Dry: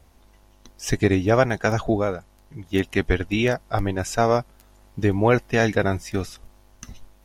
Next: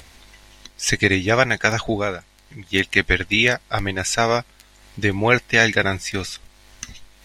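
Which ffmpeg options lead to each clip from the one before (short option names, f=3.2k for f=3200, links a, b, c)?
-af "equalizer=f=2k:t=o:w=1:g=11,equalizer=f=4k:t=o:w=1:g=10,equalizer=f=8k:t=o:w=1:g=8,acompressor=mode=upward:threshold=-37dB:ratio=2.5,volume=-1.5dB"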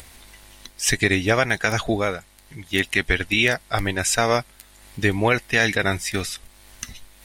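-af "alimiter=limit=-6.5dB:level=0:latency=1:release=110,aexciter=amount=2.2:drive=7.4:freq=8.4k"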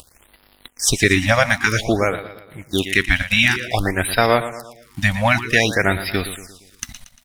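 -filter_complex "[0:a]aeval=exprs='sgn(val(0))*max(abs(val(0))-0.00631,0)':c=same,asplit=2[a][b];[b]aecho=0:1:116|232|348|464|580:0.237|0.114|0.0546|0.0262|0.0126[c];[a][c]amix=inputs=2:normalize=0,afftfilt=real='re*(1-between(b*sr/1024,350*pow(7700/350,0.5+0.5*sin(2*PI*0.53*pts/sr))/1.41,350*pow(7700/350,0.5+0.5*sin(2*PI*0.53*pts/sr))*1.41))':imag='im*(1-between(b*sr/1024,350*pow(7700/350,0.5+0.5*sin(2*PI*0.53*pts/sr))/1.41,350*pow(7700/350,0.5+0.5*sin(2*PI*0.53*pts/sr))*1.41))':win_size=1024:overlap=0.75,volume=4.5dB"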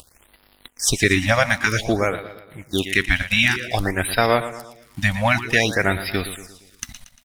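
-filter_complex "[0:a]asplit=2[a][b];[b]adelay=250,highpass=300,lowpass=3.4k,asoftclip=type=hard:threshold=-11dB,volume=-25dB[c];[a][c]amix=inputs=2:normalize=0,volume=-2dB"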